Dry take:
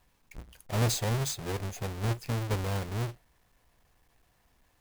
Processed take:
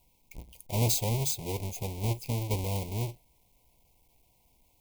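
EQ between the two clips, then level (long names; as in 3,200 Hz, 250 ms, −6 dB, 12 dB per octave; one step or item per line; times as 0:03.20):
elliptic band-stop filter 980–2,200 Hz, stop band 40 dB
high-shelf EQ 11,000 Hz +11 dB
0.0 dB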